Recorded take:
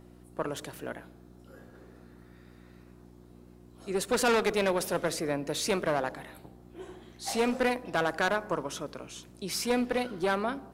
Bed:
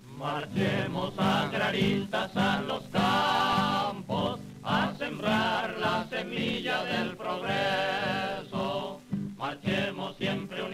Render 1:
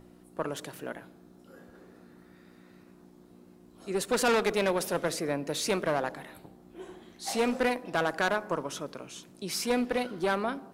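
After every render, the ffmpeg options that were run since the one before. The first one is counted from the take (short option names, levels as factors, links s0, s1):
-af "bandreject=f=60:t=h:w=4,bandreject=f=120:t=h:w=4"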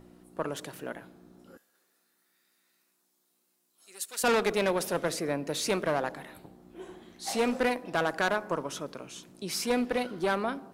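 -filter_complex "[0:a]asettb=1/sr,asplit=3[s0][s1][s2];[s0]atrim=end=1.574[s3];[s1]atrim=start=1.57:end=4.24,asetpts=PTS-STARTPTS,afade=t=in:d=0.004:c=qsin,afade=t=out:st=2.666:d=0.004:c=qsin,aderivative[s4];[s2]atrim=start=4.236[s5];[s3][s4]acrossfade=d=0.004:c1=hsin:c2=qsin[s6];[s6][s5]acrossfade=d=0.004:c1=qsin:c2=hsin"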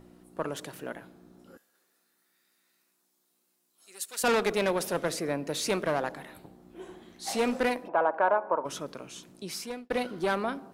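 -filter_complex "[0:a]asplit=3[s0][s1][s2];[s0]afade=t=out:st=7.87:d=0.02[s3];[s1]highpass=370,equalizer=f=580:t=q:w=4:g=7,equalizer=f=920:t=q:w=4:g=10,equalizer=f=1900:t=q:w=4:g=-9,lowpass=f=2000:w=0.5412,lowpass=f=2000:w=1.3066,afade=t=in:st=7.87:d=0.02,afade=t=out:st=8.64:d=0.02[s4];[s2]afade=t=in:st=8.64:d=0.02[s5];[s3][s4][s5]amix=inputs=3:normalize=0,asplit=2[s6][s7];[s6]atrim=end=9.9,asetpts=PTS-STARTPTS,afade=t=out:st=9.32:d=0.58[s8];[s7]atrim=start=9.9,asetpts=PTS-STARTPTS,afade=t=in:d=0.004:c=hsin[s9];[s8][s9]concat=n=2:v=0:a=1"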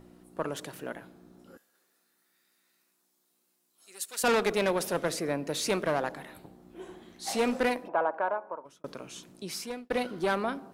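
-filter_complex "[0:a]asplit=2[s0][s1];[s0]atrim=end=8.84,asetpts=PTS-STARTPTS,afade=t=out:st=7.78:d=1.06[s2];[s1]atrim=start=8.84,asetpts=PTS-STARTPTS,afade=t=in:d=0.004:c=hsin[s3];[s2][s3]concat=n=2:v=0:a=1"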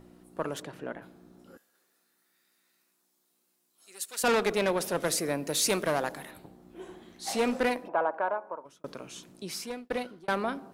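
-filter_complex "[0:a]asplit=3[s0][s1][s2];[s0]afade=t=out:st=0.61:d=0.02[s3];[s1]aemphasis=mode=reproduction:type=75fm,afade=t=in:st=0.61:d=0.02,afade=t=out:st=1.01:d=0.02[s4];[s2]afade=t=in:st=1.01:d=0.02[s5];[s3][s4][s5]amix=inputs=3:normalize=0,asettb=1/sr,asplit=3[s6][s7][s8];[s6]atrim=end=5.004[s9];[s7]atrim=start=5:end=6.31,asetpts=PTS-STARTPTS,afade=t=in:d=0.004:c=qsin,afade=t=out:st=1.306:d=0.004:c=qsin,highshelf=f=5600:g=11.5[s10];[s8]atrim=start=6.306[s11];[s9][s10]acrossfade=d=0.004:c1=hsin:c2=qsin[s12];[s12][s11]acrossfade=d=0.004:c1=qsin:c2=hsin,asplit=2[s13][s14];[s13]atrim=end=10.28,asetpts=PTS-STARTPTS,afade=t=out:st=9.85:d=0.43[s15];[s14]atrim=start=10.28,asetpts=PTS-STARTPTS,afade=t=in:d=0.004:c=hsin[s16];[s15][s16]concat=n=2:v=0:a=1"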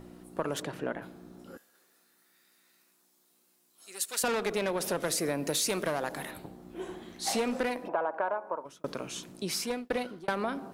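-filter_complex "[0:a]asplit=2[s0][s1];[s1]alimiter=limit=0.0891:level=0:latency=1,volume=0.794[s2];[s0][s2]amix=inputs=2:normalize=0,acompressor=threshold=0.0447:ratio=5"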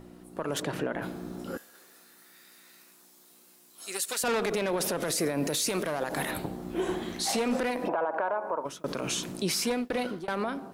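-af "dynaudnorm=f=100:g=13:m=3.55,alimiter=limit=0.1:level=0:latency=1:release=76"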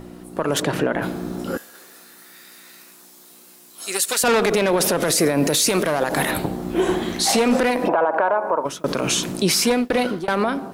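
-af "volume=3.35"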